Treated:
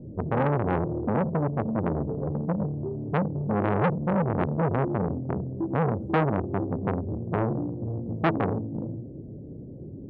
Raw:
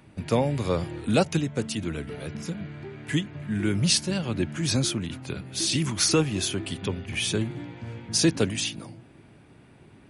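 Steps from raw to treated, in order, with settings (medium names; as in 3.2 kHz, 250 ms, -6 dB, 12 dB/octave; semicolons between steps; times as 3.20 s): companding laws mixed up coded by mu; elliptic low-pass 540 Hz, stop band 70 dB; de-hum 216.8 Hz, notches 31; dynamic bell 160 Hz, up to +3 dB, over -34 dBFS, Q 2; in parallel at +2 dB: peak limiter -20 dBFS, peak gain reduction 9.5 dB; 0.80–1.53 s: on the sum: compression 2.5:1, threshold -18 dBFS, peak gain reduction 4.5 dB; reverberation, pre-delay 3 ms, DRR 15 dB; transformer saturation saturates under 1.1 kHz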